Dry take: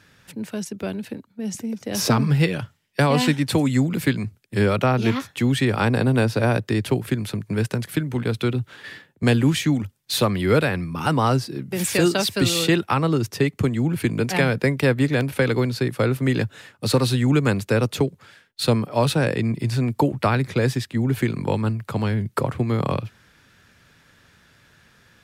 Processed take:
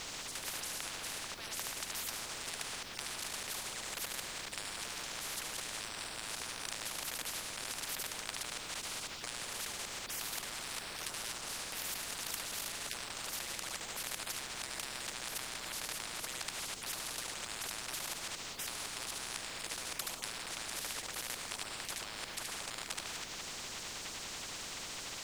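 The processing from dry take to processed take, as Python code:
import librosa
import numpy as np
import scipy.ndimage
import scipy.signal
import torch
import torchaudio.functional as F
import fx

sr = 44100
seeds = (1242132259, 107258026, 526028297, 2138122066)

y = fx.rev_schroeder(x, sr, rt60_s=0.59, comb_ms=30, drr_db=4.0)
y = fx.level_steps(y, sr, step_db=20)
y = fx.air_absorb(y, sr, metres=150.0)
y = y + 10.0 ** (-3.0 / 20.0) * np.pad(y, (int(74 * sr / 1000.0), 0))[:len(y)]
y = fx.dynamic_eq(y, sr, hz=2200.0, q=0.78, threshold_db=-42.0, ratio=4.0, max_db=-8)
y = fx.spec_gate(y, sr, threshold_db=-20, keep='weak')
y = fx.over_compress(y, sr, threshold_db=-46.0, ratio=-1.0)
y = scipy.signal.sosfilt(scipy.signal.butter(2, 1000.0, 'highpass', fs=sr, output='sos'), y)
y = fx.dmg_noise_colour(y, sr, seeds[0], colour='brown', level_db=-67.0)
y = fx.spectral_comp(y, sr, ratio=10.0)
y = y * 10.0 ** (5.5 / 20.0)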